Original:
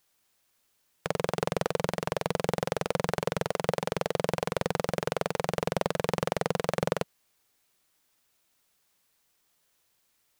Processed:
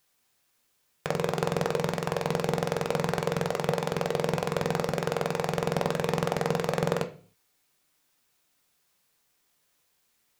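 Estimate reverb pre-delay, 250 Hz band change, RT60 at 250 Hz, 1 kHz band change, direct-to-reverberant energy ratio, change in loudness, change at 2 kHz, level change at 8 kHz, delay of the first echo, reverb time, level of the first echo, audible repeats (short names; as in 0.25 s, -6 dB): 3 ms, +3.0 dB, 0.60 s, +1.5 dB, 5.0 dB, +2.0 dB, +1.0 dB, +0.5 dB, none, 0.45 s, none, none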